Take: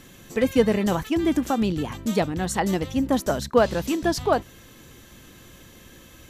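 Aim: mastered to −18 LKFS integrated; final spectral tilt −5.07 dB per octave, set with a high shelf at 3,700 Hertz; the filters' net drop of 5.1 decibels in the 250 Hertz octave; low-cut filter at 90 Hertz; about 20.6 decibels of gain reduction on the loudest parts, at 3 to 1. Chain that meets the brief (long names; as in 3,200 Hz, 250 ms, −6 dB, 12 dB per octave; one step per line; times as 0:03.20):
high-pass filter 90 Hz
parametric band 250 Hz −6.5 dB
high-shelf EQ 3,700 Hz −6.5 dB
downward compressor 3 to 1, threshold −44 dBFS
level +25.5 dB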